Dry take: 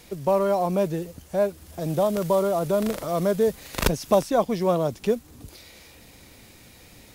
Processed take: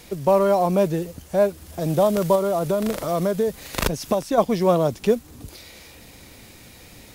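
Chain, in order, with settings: 2.35–4.38 compressor 6:1, threshold -22 dBFS, peak gain reduction 8.5 dB; gain +4 dB

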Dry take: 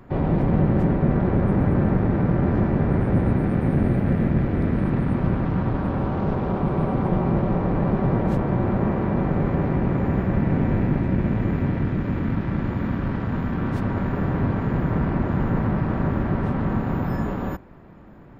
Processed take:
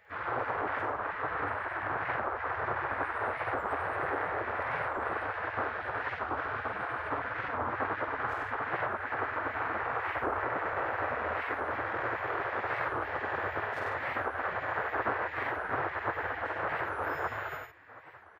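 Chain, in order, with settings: soft clip -20.5 dBFS, distortion -11 dB; Chebyshev high-pass 160 Hz, order 3; high shelf 2500 Hz -10 dB; doubler 50 ms -4 dB; echo 97 ms -3.5 dB; limiter -17 dBFS, peak gain reduction 4.5 dB; bell 1400 Hz +9.5 dB 1.1 oct; spectral gate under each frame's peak -15 dB weak; record warp 45 rpm, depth 250 cents; gain +2 dB

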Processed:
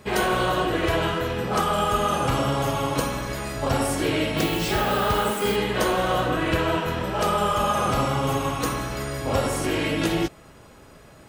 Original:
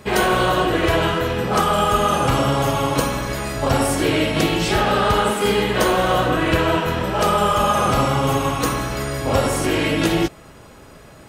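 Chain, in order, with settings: 4.37–5.55 added noise violet -34 dBFS; gain -5 dB

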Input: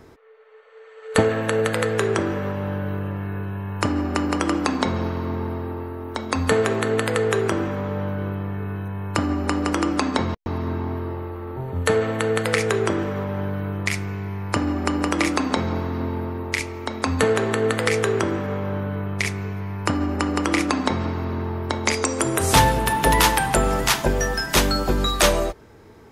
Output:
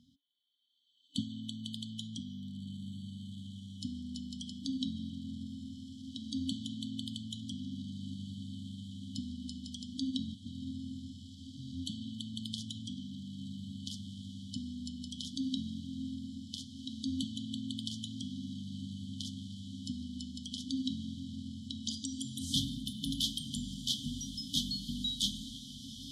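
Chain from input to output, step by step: vowel filter e; diffused feedback echo 1.718 s, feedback 74%, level -11.5 dB; FFT band-reject 290–3000 Hz; gain +11 dB

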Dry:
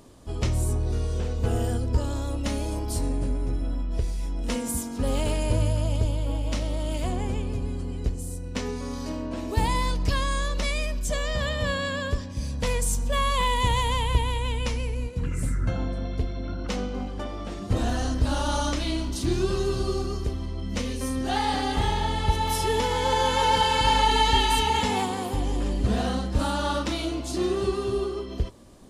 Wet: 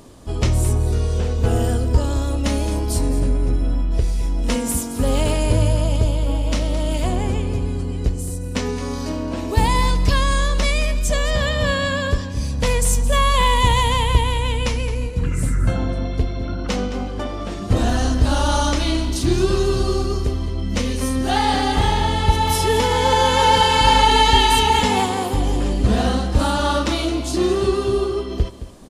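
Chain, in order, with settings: on a send: echo 0.217 s -13.5 dB; on the sum: gain +7 dB

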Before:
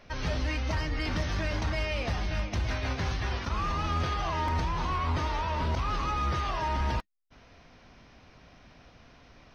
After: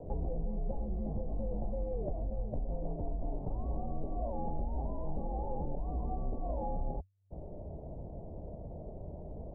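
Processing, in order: elliptic low-pass 810 Hz, stop band 50 dB; compressor 10:1, threshold -45 dBFS, peak gain reduction 18 dB; frequency shift -97 Hz; gain +13 dB

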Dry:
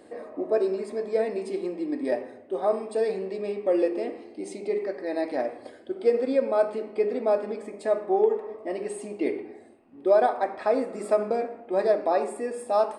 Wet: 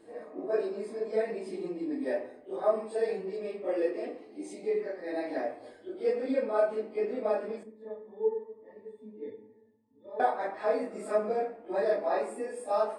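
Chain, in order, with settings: phase scrambler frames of 0.1 s; dynamic EQ 1700 Hz, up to +4 dB, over -42 dBFS, Q 1.7; 7.63–10.2 octave resonator A, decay 0.1 s; shoebox room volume 220 m³, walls furnished, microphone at 0.5 m; gain -6 dB

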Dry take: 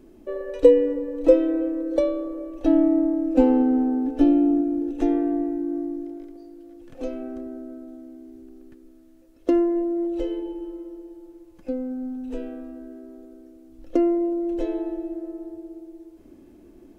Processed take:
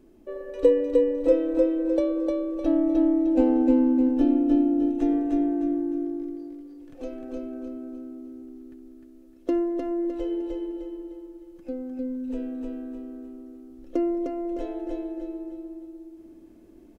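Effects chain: feedback echo 0.305 s, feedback 40%, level -3 dB; gain -5 dB

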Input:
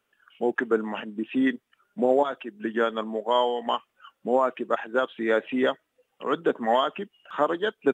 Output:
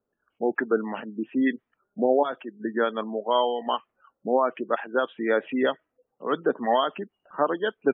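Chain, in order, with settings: low-pass opened by the level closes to 600 Hz, open at -17 dBFS; spectral gate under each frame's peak -30 dB strong

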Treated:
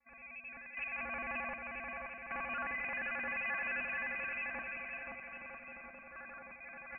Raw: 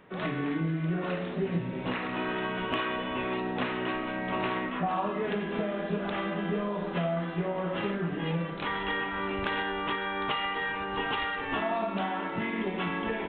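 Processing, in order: arpeggiated vocoder bare fifth, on D#3, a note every 83 ms; HPF 1500 Hz 6 dB/oct; limiter -38.5 dBFS, peak gain reduction 10 dB; AGC gain up to 6 dB; wide varispeed 1.9×; random-step tremolo 1.3 Hz, depth 90%; soft clip -37 dBFS, distortion -16 dB; on a send: bouncing-ball echo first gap 0.53 s, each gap 0.8×, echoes 5; on the sum: inverted band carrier 2900 Hz; gain +4 dB

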